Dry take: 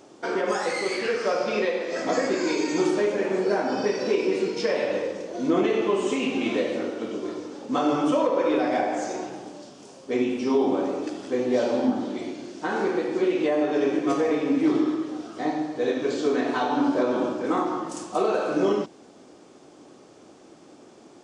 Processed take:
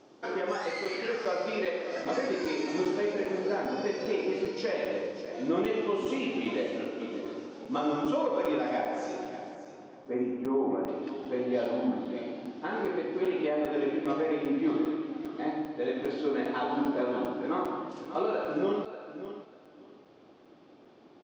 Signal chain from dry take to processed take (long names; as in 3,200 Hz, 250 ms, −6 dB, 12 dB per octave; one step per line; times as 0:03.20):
low-pass filter 5,800 Hz 24 dB per octave, from 0:09.55 1,800 Hz, from 0:10.88 4,200 Hz
repeating echo 591 ms, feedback 18%, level −12 dB
regular buffer underruns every 0.40 s, samples 256, zero, from 0:00.85
level −6.5 dB